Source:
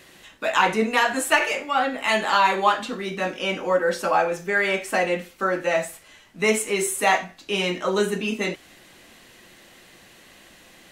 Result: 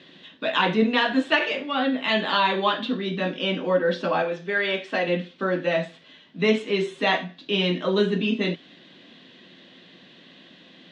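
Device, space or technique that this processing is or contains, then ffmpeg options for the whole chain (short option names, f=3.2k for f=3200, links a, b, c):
kitchen radio: -filter_complex "[0:a]asettb=1/sr,asplit=3[a][b][c];[a]atrim=end=4.224[d];[b]atrim=start=4.22:end=5.08,asetpts=PTS-STARTPTS,afade=t=in:d=0.004:c=qsin,afade=t=out:st=0.856:d=0.004:c=qsin,highpass=f=360:p=1[e];[c]atrim=start=5.076[f];[d][e]acrossfade=d=0.004:c1=hsin:c2=qsin[g];[g][f]acrossfade=d=0.004:c1=qsin:c2=hsin,highpass=160,equalizer=f=170:t=q:w=4:g=9,equalizer=f=260:t=q:w=4:g=8,equalizer=f=820:t=q:w=4:g=-7,equalizer=f=1.3k:t=q:w=4:g=-6,equalizer=f=2.2k:t=q:w=4:g=-5,equalizer=f=3.5k:t=q:w=4:g=8,lowpass=f=4.1k:w=0.5412,lowpass=f=4.1k:w=1.3066"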